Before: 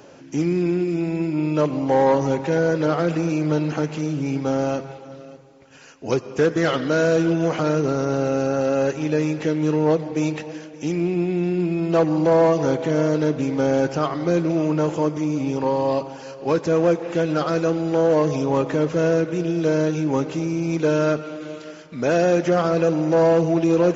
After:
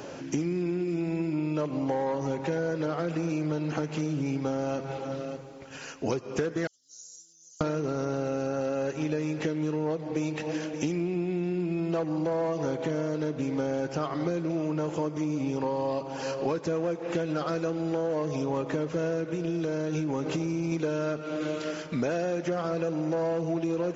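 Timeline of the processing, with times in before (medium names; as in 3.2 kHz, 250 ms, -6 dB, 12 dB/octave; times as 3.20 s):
6.67–7.61 s: inverse Chebyshev high-pass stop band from 2.5 kHz, stop band 60 dB
19.35–20.72 s: compression, threshold -23 dBFS
whole clip: compression 12:1, threshold -31 dBFS; trim +5 dB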